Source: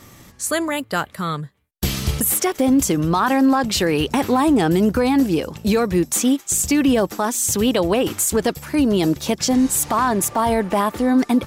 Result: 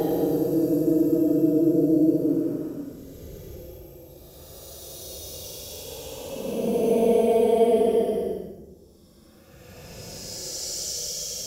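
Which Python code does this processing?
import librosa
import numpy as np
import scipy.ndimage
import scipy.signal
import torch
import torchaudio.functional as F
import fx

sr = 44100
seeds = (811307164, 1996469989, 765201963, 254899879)

y = fx.graphic_eq(x, sr, hz=(125, 250, 500, 1000, 2000, 4000, 8000), db=(-11, -4, 9, -9, -12, -9, -7))
y = fx.paulstretch(y, sr, seeds[0], factor=27.0, window_s=0.05, from_s=9.04)
y = y * librosa.db_to_amplitude(-3.0)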